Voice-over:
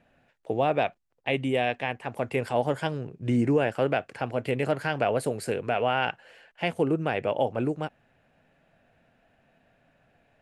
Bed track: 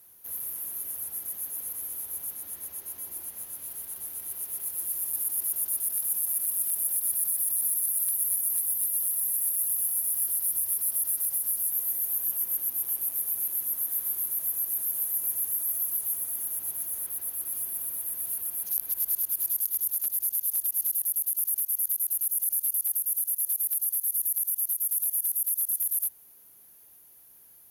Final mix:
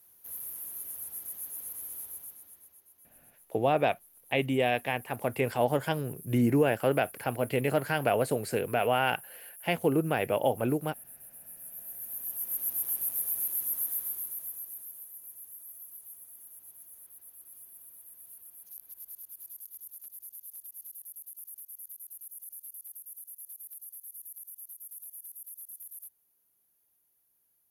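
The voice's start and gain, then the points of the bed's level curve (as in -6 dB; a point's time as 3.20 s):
3.05 s, -1.0 dB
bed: 2.03 s -5 dB
2.87 s -21.5 dB
11.34 s -21.5 dB
12.70 s -2 dB
13.84 s -2 dB
15.12 s -18 dB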